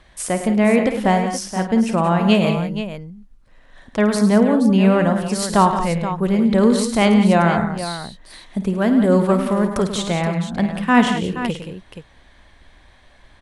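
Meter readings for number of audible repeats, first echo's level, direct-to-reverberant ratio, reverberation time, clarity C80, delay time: 4, -11.5 dB, no reverb, no reverb, no reverb, 53 ms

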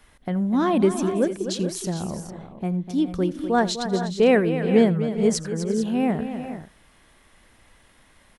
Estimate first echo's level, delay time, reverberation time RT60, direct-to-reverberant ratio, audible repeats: -20.0 dB, 82 ms, no reverb, no reverb, 5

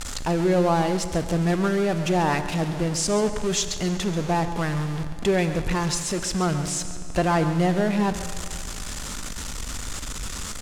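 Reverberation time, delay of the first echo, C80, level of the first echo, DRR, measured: 2.7 s, 137 ms, 10.0 dB, -13.5 dB, 9.0 dB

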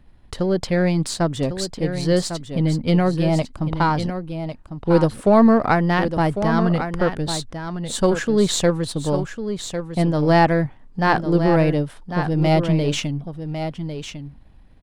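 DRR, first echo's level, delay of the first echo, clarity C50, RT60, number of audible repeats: no reverb, -9.0 dB, 1101 ms, no reverb, no reverb, 1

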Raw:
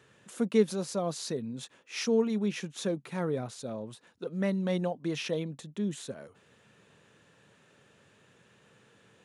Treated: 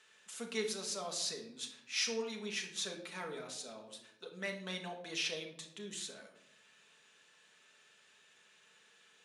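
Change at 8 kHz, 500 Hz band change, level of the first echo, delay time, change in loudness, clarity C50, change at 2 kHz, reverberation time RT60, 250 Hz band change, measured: +2.0 dB, -12.0 dB, no echo, no echo, -7.5 dB, 8.0 dB, +0.5 dB, 0.80 s, -16.5 dB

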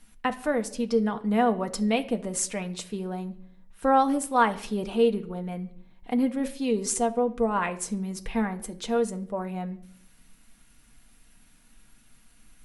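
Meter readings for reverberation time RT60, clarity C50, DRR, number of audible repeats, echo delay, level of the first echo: 0.65 s, 16.5 dB, 5.5 dB, no echo, no echo, no echo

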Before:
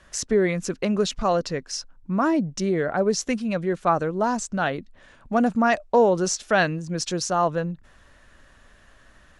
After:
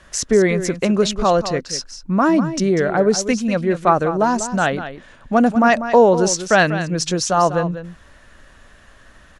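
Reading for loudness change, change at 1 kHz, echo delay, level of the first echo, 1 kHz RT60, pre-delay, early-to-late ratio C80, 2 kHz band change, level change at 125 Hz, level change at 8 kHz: +6.0 dB, +6.5 dB, 194 ms, -11.5 dB, no reverb, no reverb, no reverb, +6.5 dB, +6.5 dB, +6.5 dB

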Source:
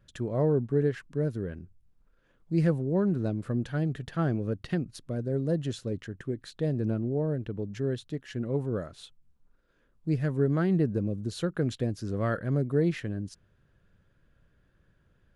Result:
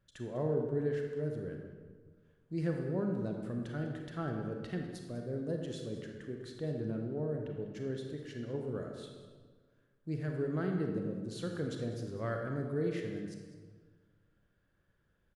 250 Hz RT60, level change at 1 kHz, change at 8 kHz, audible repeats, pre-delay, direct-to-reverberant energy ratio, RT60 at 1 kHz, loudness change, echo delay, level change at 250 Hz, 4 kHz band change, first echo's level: 1.8 s, -6.0 dB, -6.5 dB, 1, 29 ms, 2.0 dB, 1.5 s, -7.5 dB, 199 ms, -8.0 dB, -6.5 dB, -14.5 dB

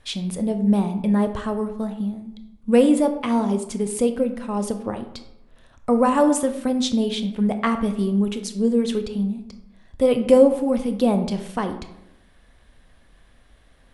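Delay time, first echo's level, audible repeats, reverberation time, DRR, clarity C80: no echo, no echo, no echo, 0.90 s, 7.5 dB, 13.0 dB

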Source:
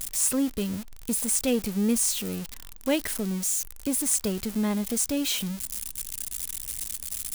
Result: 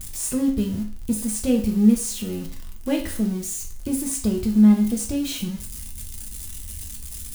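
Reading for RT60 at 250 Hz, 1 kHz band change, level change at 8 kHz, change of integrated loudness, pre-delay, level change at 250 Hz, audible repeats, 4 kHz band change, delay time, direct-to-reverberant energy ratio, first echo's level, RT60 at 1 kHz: 0.45 s, -0.5 dB, -3.0 dB, +4.5 dB, 3 ms, +8.5 dB, no echo, -3.0 dB, no echo, 1.0 dB, no echo, 0.45 s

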